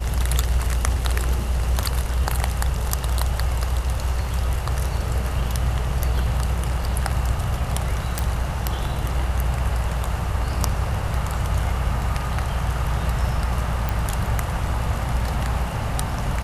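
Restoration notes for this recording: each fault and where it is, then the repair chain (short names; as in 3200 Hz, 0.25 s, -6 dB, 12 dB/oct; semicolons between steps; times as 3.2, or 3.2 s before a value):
8.19 pop
13.89 pop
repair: de-click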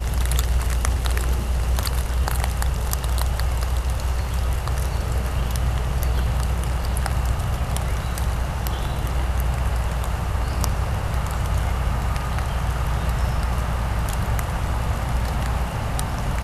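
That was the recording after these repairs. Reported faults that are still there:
none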